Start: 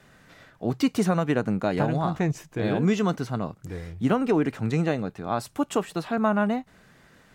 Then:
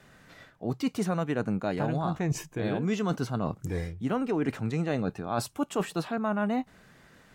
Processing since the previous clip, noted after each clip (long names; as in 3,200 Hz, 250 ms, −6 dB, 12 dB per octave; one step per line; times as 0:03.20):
noise reduction from a noise print of the clip's start 7 dB
reversed playback
downward compressor 6 to 1, threshold −32 dBFS, peak gain reduction 14 dB
reversed playback
level +6 dB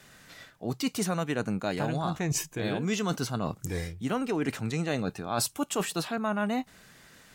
high-shelf EQ 2,600 Hz +12 dB
level −1.5 dB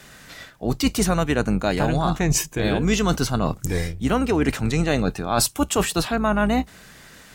sub-octave generator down 2 octaves, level −6 dB
level +8.5 dB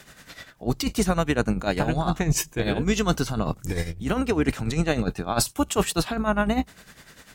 amplitude tremolo 10 Hz, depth 69%